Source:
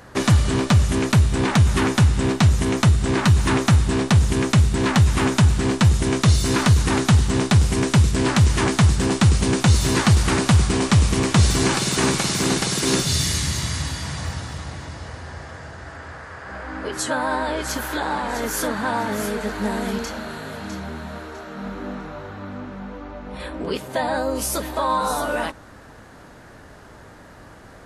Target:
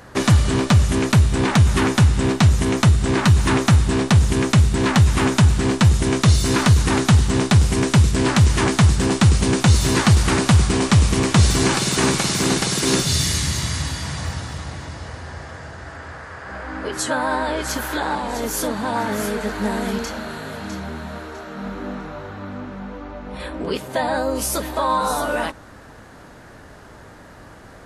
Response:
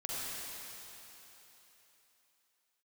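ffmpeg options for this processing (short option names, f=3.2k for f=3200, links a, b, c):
-filter_complex "[0:a]asettb=1/sr,asplit=3[a][b][c];[a]atrim=end=18.154[d];[b]atrim=start=18.15:end=18.96,asetpts=PTS-STARTPTS,afade=t=in:d=0.004:c=qsin,afade=t=out:st=0.806:d=0.004:c=qsin,equalizer=f=1.6k:t=o:w=1:g=-6.5[e];[c]atrim=start=18.956[f];[d][e]acrossfade=d=0.004:c1=hsin:c2=qsin[g];[g][f]acrossfade=d=0.004:c1=qsin:c2=hsin,volume=1.5dB"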